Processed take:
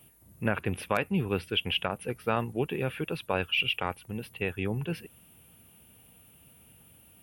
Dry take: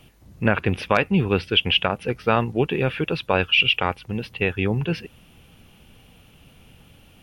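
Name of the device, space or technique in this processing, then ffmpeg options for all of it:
budget condenser microphone: -af "highpass=60,highshelf=frequency=7600:width_type=q:width=1.5:gain=13.5,volume=-8.5dB"

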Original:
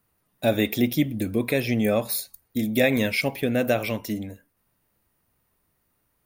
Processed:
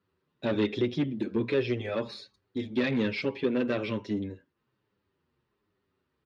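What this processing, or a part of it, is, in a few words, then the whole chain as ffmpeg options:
barber-pole flanger into a guitar amplifier: -filter_complex "[0:a]asplit=2[link_01][link_02];[link_02]adelay=7.6,afreqshift=-1.2[link_03];[link_01][link_03]amix=inputs=2:normalize=1,asoftclip=type=tanh:threshold=-22dB,highpass=80,equalizer=frequency=380:width_type=q:width=4:gain=9,equalizer=frequency=700:width_type=q:width=4:gain=-9,equalizer=frequency=2200:width_type=q:width=4:gain=-4,lowpass=frequency=4300:width=0.5412,lowpass=frequency=4300:width=1.3066"

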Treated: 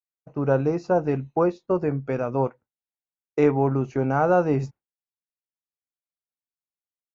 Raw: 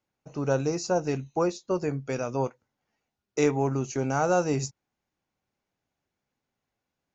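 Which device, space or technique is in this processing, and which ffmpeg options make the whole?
hearing-loss simulation: -af "lowpass=1800,agate=range=-33dB:threshold=-40dB:ratio=3:detection=peak,volume=4.5dB"

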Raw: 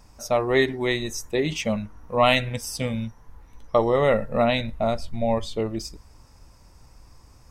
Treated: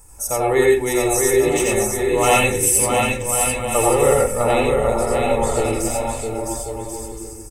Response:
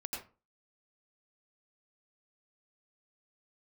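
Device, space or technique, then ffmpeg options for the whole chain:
microphone above a desk: -filter_complex "[0:a]highshelf=frequency=6400:width_type=q:width=3:gain=13,aecho=1:1:2.3:0.6,aecho=1:1:660|1089|1368|1549|1667:0.631|0.398|0.251|0.158|0.1[link_01];[1:a]atrim=start_sample=2205[link_02];[link_01][link_02]afir=irnorm=-1:irlink=0,volume=3dB"

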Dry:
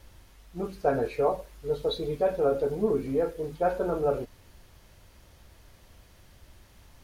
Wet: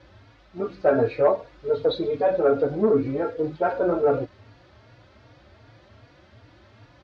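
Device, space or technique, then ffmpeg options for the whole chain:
barber-pole flanger into a guitar amplifier: -filter_complex "[0:a]asplit=2[link_01][link_02];[link_02]adelay=3.6,afreqshift=2.6[link_03];[link_01][link_03]amix=inputs=2:normalize=1,asoftclip=type=tanh:threshold=-18.5dB,highpass=100,equalizer=frequency=110:width_type=q:width=4:gain=9,equalizer=frequency=170:width_type=q:width=4:gain=-5,equalizer=frequency=300:width_type=q:width=4:gain=6,equalizer=frequency=610:width_type=q:width=4:gain=5,equalizer=frequency=1400:width_type=q:width=4:gain=4,equalizer=frequency=3000:width_type=q:width=4:gain=-4,lowpass=frequency=4400:width=0.5412,lowpass=frequency=4400:width=1.3066,volume=7.5dB"

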